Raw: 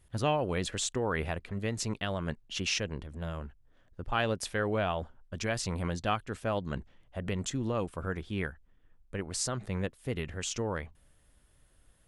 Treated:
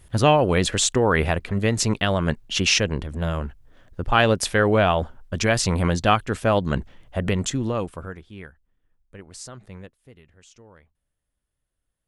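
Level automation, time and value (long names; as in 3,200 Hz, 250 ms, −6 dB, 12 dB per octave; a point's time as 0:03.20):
0:07.19 +12 dB
0:07.94 +4.5 dB
0:08.25 −6 dB
0:09.74 −6 dB
0:10.20 −16.5 dB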